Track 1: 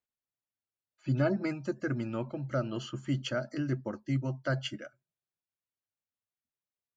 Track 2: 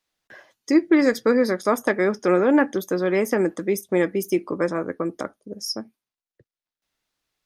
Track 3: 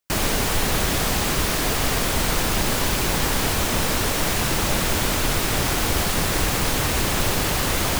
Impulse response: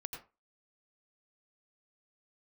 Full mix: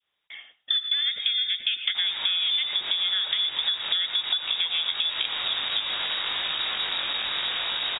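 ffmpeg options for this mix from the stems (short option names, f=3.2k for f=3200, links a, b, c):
-filter_complex "[0:a]volume=-8dB[a];[1:a]volume=0dB,asplit=2[b][c];[c]volume=-7dB[d];[2:a]flanger=delay=20:depth=2.3:speed=0.68,asoftclip=type=tanh:threshold=-23dB,adelay=1850,volume=-4dB,asplit=2[e][f];[f]volume=-7dB[g];[b][e]amix=inputs=2:normalize=0,equalizer=f=350:w=0.65:g=7.5,acompressor=threshold=-17dB:ratio=6,volume=0dB[h];[3:a]atrim=start_sample=2205[i];[d][g]amix=inputs=2:normalize=0[j];[j][i]afir=irnorm=-1:irlink=0[k];[a][h][k]amix=inputs=3:normalize=0,adynamicequalizer=threshold=0.0112:dfrequency=2500:dqfactor=0.9:tfrequency=2500:tqfactor=0.9:attack=5:release=100:ratio=0.375:range=2:mode=boostabove:tftype=bell,lowpass=f=3.2k:t=q:w=0.5098,lowpass=f=3.2k:t=q:w=0.6013,lowpass=f=3.2k:t=q:w=0.9,lowpass=f=3.2k:t=q:w=2.563,afreqshift=-3800,acompressor=threshold=-23dB:ratio=6"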